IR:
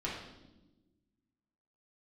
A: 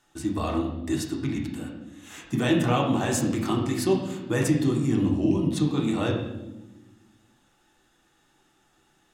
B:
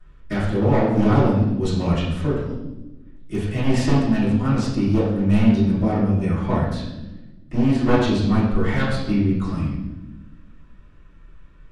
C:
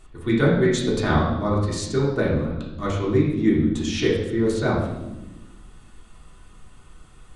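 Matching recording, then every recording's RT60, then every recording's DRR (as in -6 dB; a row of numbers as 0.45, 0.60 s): C; 1.1, 1.1, 1.1 s; -1.5, -14.0, -6.5 dB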